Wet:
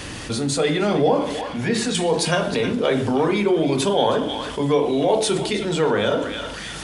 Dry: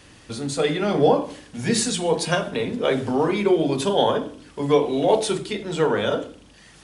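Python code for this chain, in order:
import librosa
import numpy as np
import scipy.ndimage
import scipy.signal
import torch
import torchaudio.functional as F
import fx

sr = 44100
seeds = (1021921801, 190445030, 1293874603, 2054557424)

y = fx.bass_treble(x, sr, bass_db=-5, treble_db=-13, at=(1.41, 1.95))
y = fx.echo_banded(y, sr, ms=314, feedback_pct=42, hz=2800.0, wet_db=-12)
y = fx.env_flatten(y, sr, amount_pct=50)
y = F.gain(torch.from_numpy(y), -2.0).numpy()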